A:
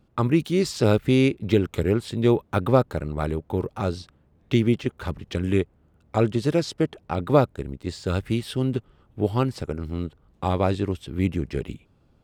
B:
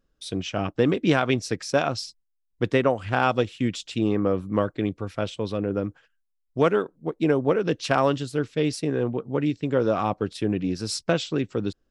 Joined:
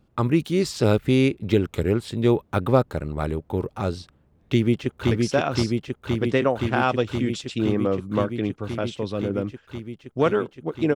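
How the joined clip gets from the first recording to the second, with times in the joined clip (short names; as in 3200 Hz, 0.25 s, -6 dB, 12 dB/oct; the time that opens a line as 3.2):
A
4.47–5.11 echo throw 0.52 s, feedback 85%, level -2.5 dB
5.11 switch to B from 1.51 s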